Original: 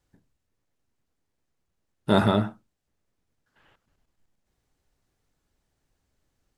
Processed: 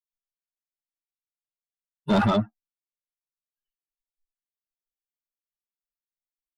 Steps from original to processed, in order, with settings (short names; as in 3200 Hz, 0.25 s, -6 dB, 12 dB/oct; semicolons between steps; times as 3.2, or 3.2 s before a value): per-bin expansion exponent 3; tone controls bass +4 dB, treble -5 dB; harmonic-percussive split percussive -7 dB; overdrive pedal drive 25 dB, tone 2600 Hz, clips at -11.5 dBFS; bell 2000 Hz -5 dB